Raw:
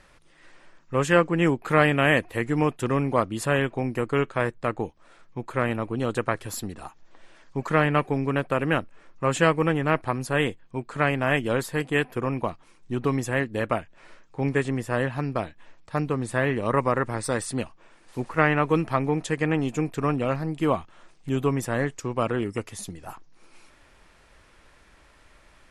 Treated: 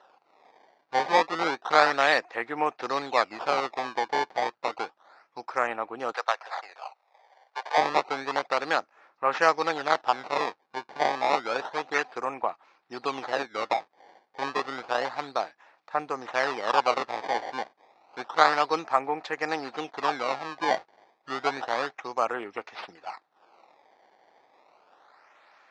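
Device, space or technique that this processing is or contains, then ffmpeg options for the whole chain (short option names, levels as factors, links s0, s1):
circuit-bent sampling toy: -filter_complex "[0:a]acrusher=samples=19:mix=1:aa=0.000001:lfo=1:lforange=30.4:lforate=0.3,highpass=600,equalizer=f=790:t=q:w=4:g=8,equalizer=f=1300:t=q:w=4:g=3,equalizer=f=3100:t=q:w=4:g=-6,lowpass=f=4800:w=0.5412,lowpass=f=4800:w=1.3066,asettb=1/sr,asplit=3[s0][s1][s2];[s0]atrim=end=6.124[s3];[s1]atrim=start=6.12:end=7.78,asetpts=PTS-STARTPTS,afade=t=in:d=0.004:c=qsin,afade=t=out:st=1.656:d=0.004:c=qsin,highpass=f=550:w=0.5412,highpass=f=550:w=1.3066[s4];[s2]atrim=start=7.776[s5];[s3][s4]acrossfade=d=0.004:c1=hsin:c2=qsin[s6];[s6][s5]acrossfade=d=0.004:c1=qsin:c2=hsin"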